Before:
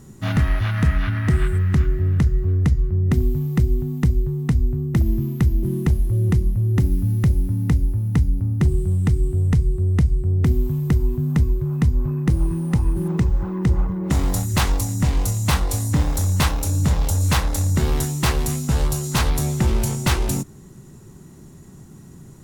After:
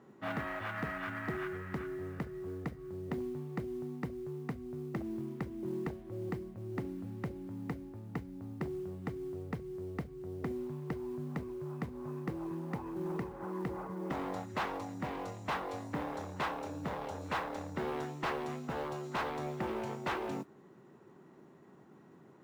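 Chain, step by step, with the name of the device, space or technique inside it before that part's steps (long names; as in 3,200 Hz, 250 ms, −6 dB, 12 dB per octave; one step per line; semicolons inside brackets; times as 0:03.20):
carbon microphone (band-pass filter 400–2,700 Hz; soft clipping −23.5 dBFS, distortion −13 dB; noise that follows the level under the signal 22 dB)
high-shelf EQ 2,400 Hz −9.5 dB
level −3.5 dB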